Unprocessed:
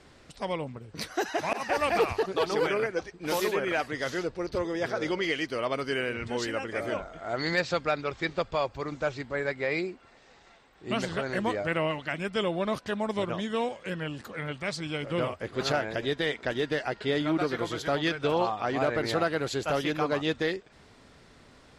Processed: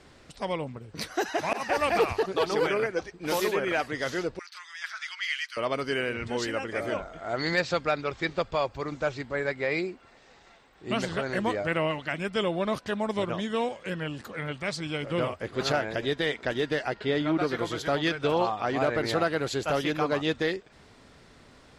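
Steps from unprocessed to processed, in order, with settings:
0:04.39–0:05.57: inverse Chebyshev high-pass filter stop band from 530 Hz, stop band 50 dB
0:16.94–0:17.43: high-shelf EQ 7,600 Hz −12 dB
level +1 dB

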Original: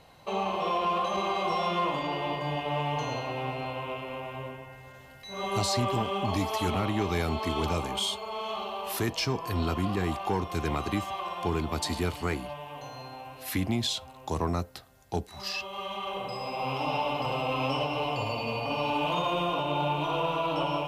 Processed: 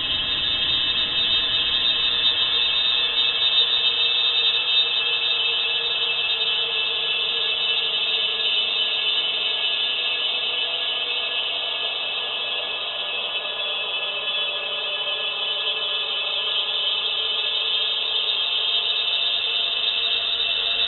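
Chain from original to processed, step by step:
mains hum 50 Hz, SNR 19 dB
multi-voice chorus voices 4, 0.3 Hz, delay 26 ms, depth 4.3 ms
extreme stretch with random phases 35×, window 0.25 s, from 0:05.74
voice inversion scrambler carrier 3,800 Hz
level +8.5 dB

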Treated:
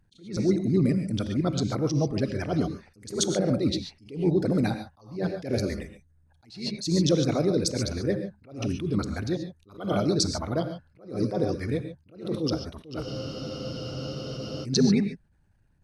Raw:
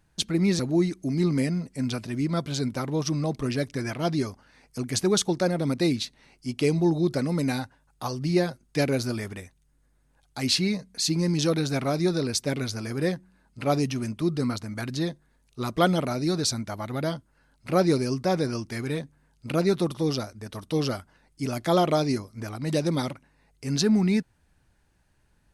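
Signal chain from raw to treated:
spectral envelope exaggerated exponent 1.5
time stretch by overlap-add 0.62×, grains 21 ms
reverb whose tail is shaped and stops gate 160 ms rising, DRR 8 dB
frozen spectrum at 0:13.06, 1.57 s
level that may rise only so fast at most 130 dB per second
level +2.5 dB

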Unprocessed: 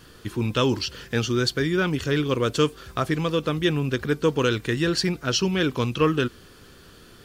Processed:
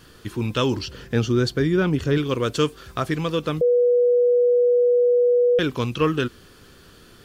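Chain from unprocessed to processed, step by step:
0:00.75–0:02.18: tilt shelving filter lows +4.5 dB
0:03.61–0:05.59: beep over 487 Hz −14 dBFS

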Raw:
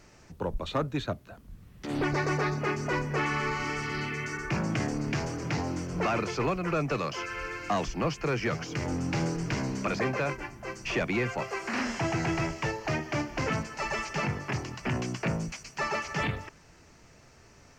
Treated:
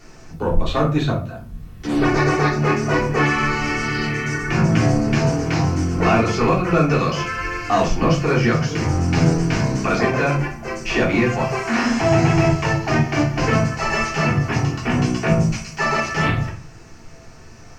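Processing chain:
rectangular room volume 240 cubic metres, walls furnished, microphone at 3.4 metres
level +4 dB

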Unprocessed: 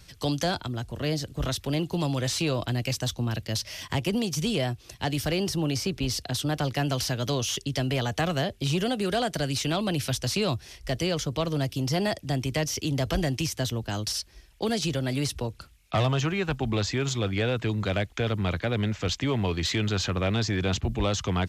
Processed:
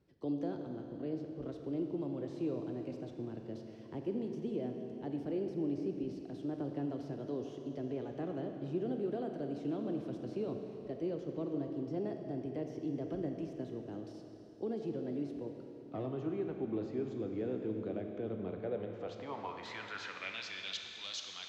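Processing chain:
band-pass filter sweep 340 Hz → 4,100 Hz, 0:18.43–0:20.85
four-comb reverb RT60 3.4 s, combs from 28 ms, DRR 3.5 dB
level −5 dB

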